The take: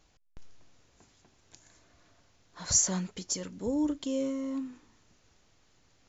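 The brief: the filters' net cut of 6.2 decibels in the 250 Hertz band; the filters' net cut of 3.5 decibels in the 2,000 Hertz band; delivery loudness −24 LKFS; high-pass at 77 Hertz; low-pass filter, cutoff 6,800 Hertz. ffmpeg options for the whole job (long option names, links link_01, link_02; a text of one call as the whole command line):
ffmpeg -i in.wav -af "highpass=77,lowpass=6800,equalizer=frequency=250:width_type=o:gain=-7.5,equalizer=frequency=2000:width_type=o:gain=-4.5,volume=10dB" out.wav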